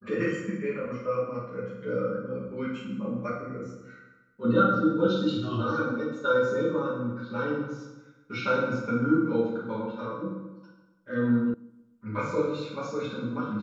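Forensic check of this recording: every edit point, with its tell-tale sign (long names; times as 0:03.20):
0:11.54: cut off before it has died away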